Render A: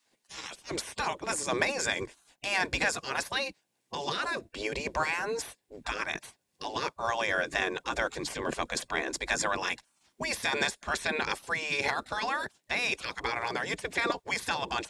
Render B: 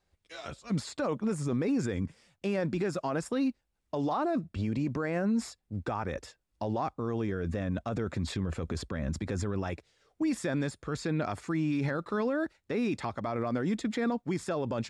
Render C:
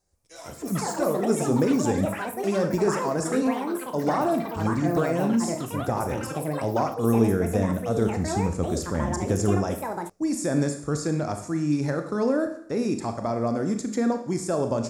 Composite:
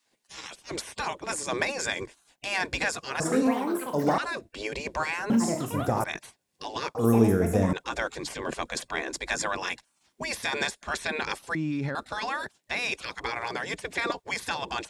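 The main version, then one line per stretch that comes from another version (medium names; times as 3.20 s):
A
3.20–4.18 s: from C
5.30–6.04 s: from C
6.95–7.73 s: from C
11.55–11.95 s: from B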